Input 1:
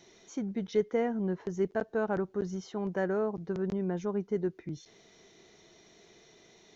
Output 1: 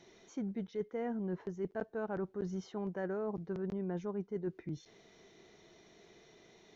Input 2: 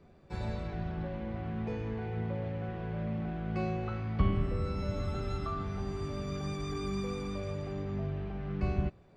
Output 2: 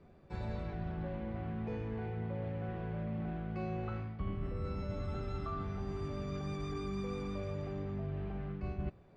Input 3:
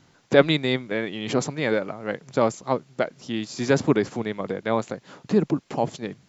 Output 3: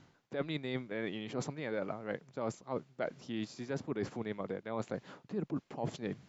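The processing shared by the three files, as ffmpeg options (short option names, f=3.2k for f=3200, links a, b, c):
-af "highshelf=f=5.2k:g=-10,areverse,acompressor=threshold=-33dB:ratio=8,areverse,volume=-1dB"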